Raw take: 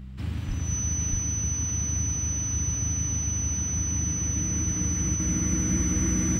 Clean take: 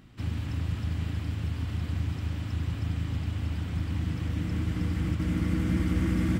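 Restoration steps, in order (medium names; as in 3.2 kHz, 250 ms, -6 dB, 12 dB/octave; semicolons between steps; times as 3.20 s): de-hum 64.4 Hz, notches 3; band-stop 6 kHz, Q 30; 0.47–0.59 s: high-pass 140 Hz 24 dB/octave; 1.10–1.22 s: high-pass 140 Hz 24 dB/octave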